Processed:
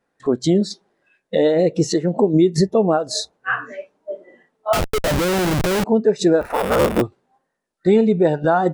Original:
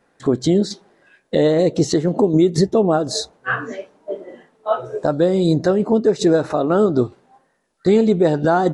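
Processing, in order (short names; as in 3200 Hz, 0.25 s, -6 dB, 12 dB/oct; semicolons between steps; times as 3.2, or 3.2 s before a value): 6.41–7.02 cycle switcher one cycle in 3, inverted; spectral noise reduction 11 dB; 4.73–5.84 Schmitt trigger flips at -32 dBFS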